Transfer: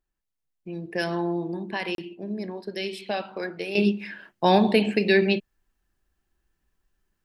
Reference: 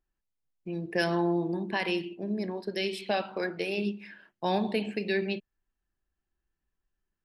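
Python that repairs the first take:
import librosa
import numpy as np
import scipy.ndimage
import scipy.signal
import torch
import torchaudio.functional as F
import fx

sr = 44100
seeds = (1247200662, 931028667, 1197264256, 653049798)

y = fx.fix_interpolate(x, sr, at_s=(1.95,), length_ms=32.0)
y = fx.fix_level(y, sr, at_s=3.75, step_db=-9.5)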